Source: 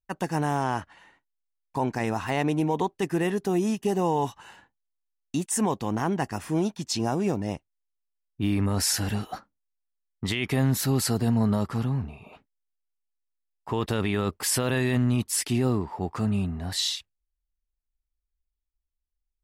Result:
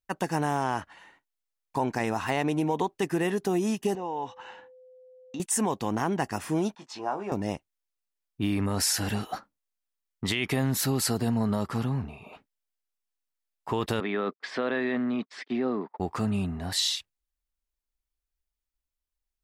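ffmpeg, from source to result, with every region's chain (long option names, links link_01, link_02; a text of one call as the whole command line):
ffmpeg -i in.wav -filter_complex "[0:a]asettb=1/sr,asplit=3[link_01][link_02][link_03];[link_01]atrim=end=3.954[link_04];[link_02]atrim=start=3.95:end=5.4,asetpts=PTS-STARTPTS,afade=type=in:duration=0.004:curve=qsin,afade=type=out:start_time=1.446:duration=0.004:curve=qsin,acompressor=threshold=-40dB:ratio=2:attack=3.2:release=140:knee=1:detection=peak,aeval=exprs='val(0)+0.00251*sin(2*PI*510*n/s)':channel_layout=same,highpass=110,equalizer=frequency=160:width_type=q:width=4:gain=-6,equalizer=frequency=860:width_type=q:width=4:gain=4,equalizer=frequency=4600:width_type=q:width=4:gain=-7,lowpass=frequency=5300:width=0.5412,lowpass=frequency=5300:width=1.3066[link_05];[link_03]atrim=start=5.396[link_06];[link_04][link_05]acrossfade=duration=0.004:curve1=hsin:curve2=qsin[link_07];[link_07][link_06]acrossfade=duration=0.004:curve1=qsin:curve2=hsin,asettb=1/sr,asplit=3[link_08][link_09][link_10];[link_08]atrim=end=6.754[link_11];[link_09]atrim=start=6.75:end=7.32,asetpts=PTS-STARTPTS,afade=type=in:duration=0.004:curve=qsin,afade=type=out:start_time=0.566:duration=0.004:curve=qsin,bandpass=frequency=1000:width_type=q:width=1.3,asplit=2[link_12][link_13];[link_13]adelay=20,volume=-7dB[link_14];[link_12][link_14]amix=inputs=2:normalize=0,atrim=end_sample=25137[link_15];[link_10]atrim=start=7.316[link_16];[link_11][link_15]acrossfade=duration=0.004:curve1=hsin:curve2=qsin[link_17];[link_17][link_16]acrossfade=duration=0.004:curve1=qsin:curve2=hsin,asettb=1/sr,asplit=3[link_18][link_19][link_20];[link_18]atrim=end=14.004[link_21];[link_19]atrim=start=14:end=16,asetpts=PTS-STARTPTS,afade=type=in:duration=0.004:curve=qsin,afade=type=out:start_time=1.996:duration=0.004:curve=qsin,agate=range=-36dB:threshold=-35dB:ratio=16:release=100:detection=peak,highpass=frequency=220:width=0.5412,highpass=frequency=220:width=1.3066,equalizer=frequency=330:width_type=q:width=4:gain=-4,equalizer=frequency=910:width_type=q:width=4:gain=-5,equalizer=frequency=2800:width_type=q:width=4:gain=-10,lowpass=frequency=3300:width=0.5412,lowpass=frequency=3300:width=1.3066[link_22];[link_20]atrim=start=15.996[link_23];[link_21][link_22]acrossfade=duration=0.004:curve1=hsin:curve2=qsin[link_24];[link_24][link_23]acrossfade=duration=0.004:curve1=qsin:curve2=hsin,lowshelf=frequency=150:gain=-7,acompressor=threshold=-24dB:ratio=6,volume=2dB" out.wav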